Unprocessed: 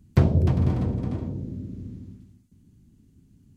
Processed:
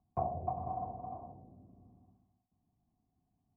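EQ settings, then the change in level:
formant resonators in series a
high-frequency loss of the air 420 metres
parametric band 720 Hz +9 dB 0.23 octaves
+4.0 dB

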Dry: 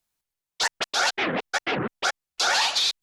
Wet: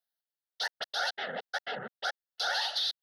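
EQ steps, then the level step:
high-pass filter 220 Hz 12 dB per octave
phaser with its sweep stopped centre 1,600 Hz, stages 8
−7.0 dB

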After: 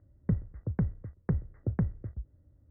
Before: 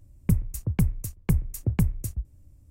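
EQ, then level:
high-pass filter 51 Hz
Chebyshev low-pass with heavy ripple 2,000 Hz, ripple 6 dB
0.0 dB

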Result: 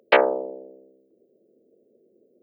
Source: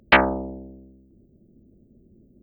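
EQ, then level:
high-pass with resonance 470 Hz, resonance Q 4.9
parametric band 1,400 Hz −2.5 dB 1.6 octaves
−3.5 dB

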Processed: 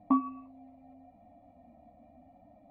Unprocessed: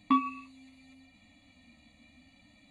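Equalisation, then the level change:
low-pass with resonance 700 Hz, resonance Q 7.9
0.0 dB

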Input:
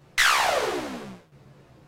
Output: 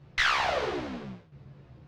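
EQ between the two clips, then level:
high-frequency loss of the air 230 metres
parametric band 82 Hz +11 dB 2.4 octaves
high-shelf EQ 3,800 Hz +11 dB
−5.0 dB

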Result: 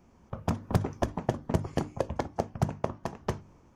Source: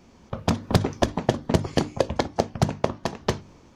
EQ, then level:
graphic EQ with 10 bands 250 Hz −3 dB, 500 Hz −3 dB, 2,000 Hz −3 dB, 4,000 Hz −12 dB, 8,000 Hz −3 dB
−4.5 dB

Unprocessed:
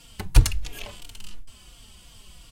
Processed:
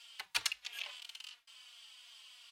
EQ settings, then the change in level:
first difference
three-way crossover with the lows and the highs turned down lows −19 dB, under 570 Hz, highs −23 dB, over 4,100 Hz
high-shelf EQ 12,000 Hz −4 dB
+8.0 dB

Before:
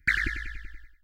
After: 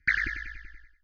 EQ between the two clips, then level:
Chebyshev low-pass with heavy ripple 6,500 Hz, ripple 6 dB
0.0 dB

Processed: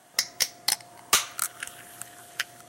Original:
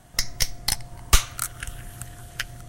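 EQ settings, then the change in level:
high-pass filter 340 Hz 12 dB per octave
0.0 dB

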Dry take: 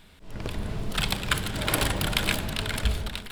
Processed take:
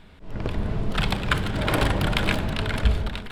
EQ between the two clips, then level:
low-pass filter 1,700 Hz 6 dB per octave
+5.5 dB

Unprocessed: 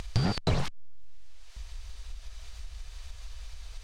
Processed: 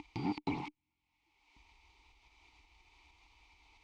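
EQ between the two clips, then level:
formant filter u
bass and treble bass −2 dB, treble +6 dB
high-shelf EQ 8,000 Hz −10.5 dB
+7.5 dB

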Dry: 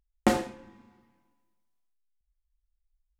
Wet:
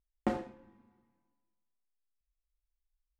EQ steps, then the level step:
low-pass filter 1,400 Hz 6 dB per octave
−8.0 dB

